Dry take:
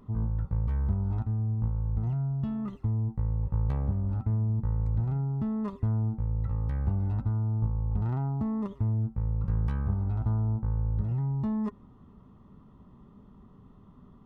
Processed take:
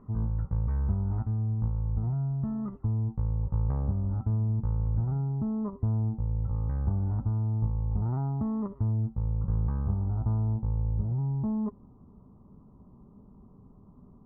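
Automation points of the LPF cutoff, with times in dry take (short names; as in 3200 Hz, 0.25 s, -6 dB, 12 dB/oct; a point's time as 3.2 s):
LPF 24 dB/oct
1700 Hz
from 1.64 s 1400 Hz
from 5.29 s 1100 Hz
from 6.54 s 1400 Hz
from 7.19 s 1200 Hz
from 8.14 s 1400 Hz
from 8.91 s 1200 Hz
from 10.54 s 1000 Hz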